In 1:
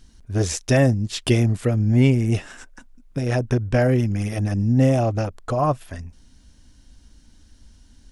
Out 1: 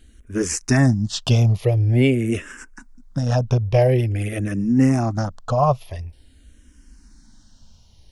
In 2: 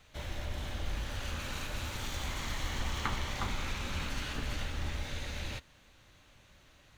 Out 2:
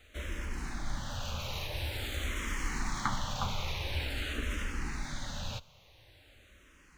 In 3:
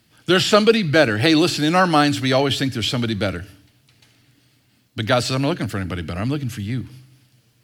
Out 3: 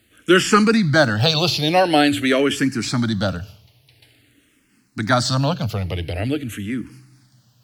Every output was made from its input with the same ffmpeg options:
-filter_complex "[0:a]asplit=2[a][b];[b]afreqshift=-0.47[c];[a][c]amix=inputs=2:normalize=1,volume=4dB"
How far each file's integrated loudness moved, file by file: +1.0, +1.0, 0.0 LU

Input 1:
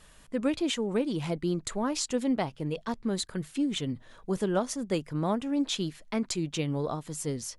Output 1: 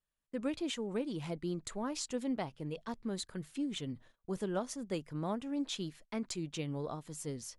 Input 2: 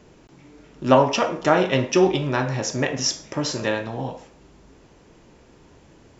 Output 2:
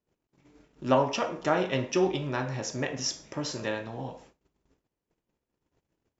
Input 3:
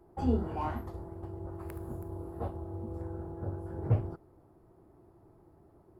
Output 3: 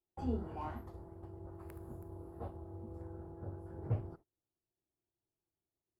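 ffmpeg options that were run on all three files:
-af "agate=range=-28dB:threshold=-47dB:ratio=16:detection=peak,volume=-8dB"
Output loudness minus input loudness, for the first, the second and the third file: -8.0, -8.0, -8.0 LU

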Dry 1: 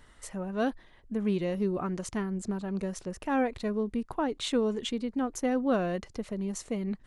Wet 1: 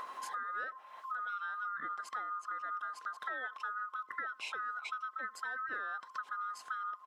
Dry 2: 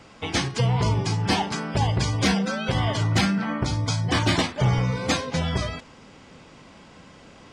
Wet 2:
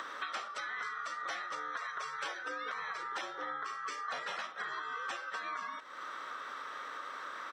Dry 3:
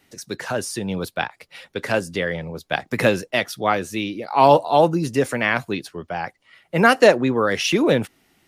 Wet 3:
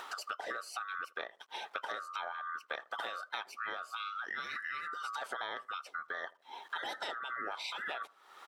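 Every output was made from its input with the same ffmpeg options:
-filter_complex "[0:a]afftfilt=real='real(if(lt(b,960),b+48*(1-2*mod(floor(b/48),2)),b),0)':imag='imag(if(lt(b,960),b+48*(1-2*mod(floor(b/48),2)),b),0)':win_size=2048:overlap=0.75,acrusher=bits=10:mix=0:aa=0.000001,afftfilt=real='re*lt(hypot(re,im),0.447)':imag='im*lt(hypot(re,im),0.447)':win_size=1024:overlap=0.75,lowpass=f=1.6k:p=1,asplit=2[a][b];[b]adelay=80,lowpass=f=940:p=1,volume=-23dB,asplit=2[c][d];[d]adelay=80,lowpass=f=940:p=1,volume=0.24[e];[c][e]amix=inputs=2:normalize=0[f];[a][f]amix=inputs=2:normalize=0,acompressor=mode=upward:threshold=-43dB:ratio=2.5,highpass=510,acompressor=threshold=-44dB:ratio=8,volume=6.5dB"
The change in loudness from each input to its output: -8.0, -15.5, -20.0 LU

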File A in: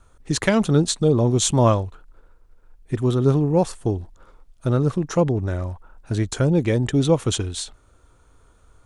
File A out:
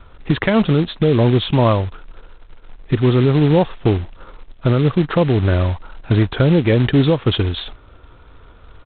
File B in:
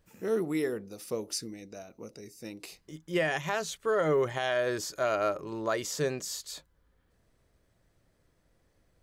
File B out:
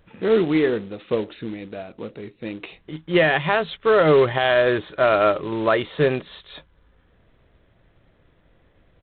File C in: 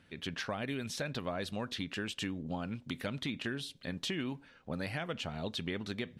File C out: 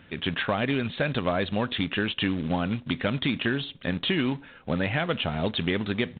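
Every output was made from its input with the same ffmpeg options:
-af "alimiter=limit=-16.5dB:level=0:latency=1:release=379,acontrast=55,aresample=8000,acrusher=bits=4:mode=log:mix=0:aa=0.000001,aresample=44100,volume=5dB"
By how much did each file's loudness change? +4.5, +11.0, +11.0 LU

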